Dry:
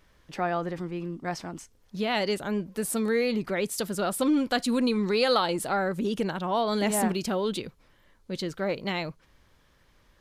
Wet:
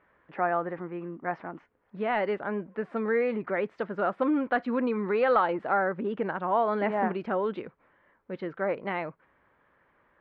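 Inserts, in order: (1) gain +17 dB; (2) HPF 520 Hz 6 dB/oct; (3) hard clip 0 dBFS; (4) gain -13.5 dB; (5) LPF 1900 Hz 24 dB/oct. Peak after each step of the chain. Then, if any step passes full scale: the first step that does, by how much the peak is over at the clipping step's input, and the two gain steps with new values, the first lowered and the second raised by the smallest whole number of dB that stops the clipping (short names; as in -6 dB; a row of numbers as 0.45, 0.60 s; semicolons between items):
+6.5, +5.0, 0.0, -13.5, -12.0 dBFS; step 1, 5.0 dB; step 1 +12 dB, step 4 -8.5 dB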